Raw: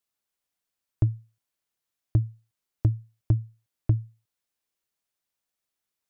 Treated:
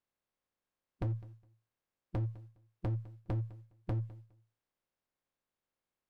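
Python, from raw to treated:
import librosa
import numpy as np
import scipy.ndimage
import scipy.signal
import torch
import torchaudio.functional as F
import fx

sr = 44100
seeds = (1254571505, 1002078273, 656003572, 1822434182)

p1 = fx.spec_clip(x, sr, under_db=15)
p2 = fx.lowpass(p1, sr, hz=1000.0, slope=6)
p3 = fx.over_compress(p2, sr, threshold_db=-32.0, ratio=-1.0)
p4 = p2 + (p3 * 10.0 ** (-2.5 / 20.0))
p5 = fx.comb_fb(p4, sr, f0_hz=540.0, decay_s=0.36, harmonics='all', damping=0.0, mix_pct=70)
p6 = np.clip(p5, -10.0 ** (-35.5 / 20.0), 10.0 ** (-35.5 / 20.0))
p7 = fx.echo_feedback(p6, sr, ms=206, feedback_pct=18, wet_db=-20)
y = p7 * 10.0 ** (4.5 / 20.0)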